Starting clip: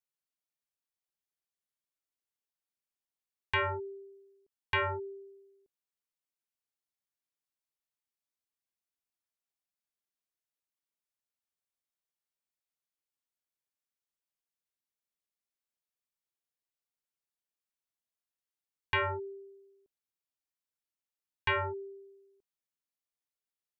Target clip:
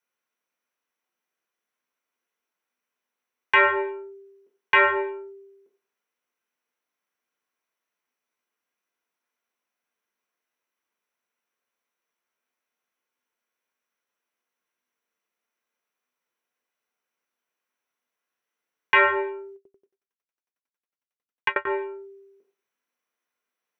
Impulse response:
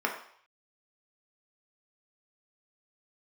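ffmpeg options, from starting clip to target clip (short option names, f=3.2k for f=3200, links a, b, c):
-filter_complex "[1:a]atrim=start_sample=2205,asetrate=48510,aresample=44100[a];[0:a][a]afir=irnorm=-1:irlink=0,asettb=1/sr,asplit=3[b][c][d];[b]atrim=end=19.564[e];[c]atrim=start=19.56:end=21.67,asetpts=PTS-STARTPTS,afade=t=in:d=0.004:c=qsin,afade=t=out:st=2.106:d=0.004:c=qsin,aeval=exprs='val(0)*pow(10,-38*if(lt(mod(11*n/s,1),2*abs(11)/1000),1-mod(11*n/s,1)/(2*abs(11)/1000),(mod(11*n/s,1)-2*abs(11)/1000)/(1-2*abs(11)/1000))/20)':c=same[f];[d]atrim=start=21.666[g];[e][f]acrossfade=d=0.004:c1=hsin:c2=qsin[h];[h][g]acrossfade=d=0.004:c1=qsin:c2=hsin,volume=5dB"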